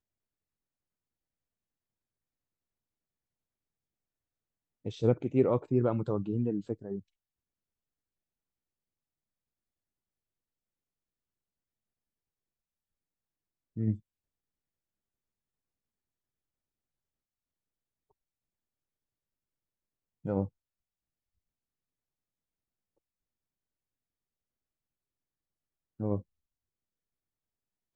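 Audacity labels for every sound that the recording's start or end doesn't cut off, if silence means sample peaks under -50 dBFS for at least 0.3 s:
4.850000	7.010000	sound
13.760000	13.990000	sound
20.250000	20.480000	sound
26.000000	26.220000	sound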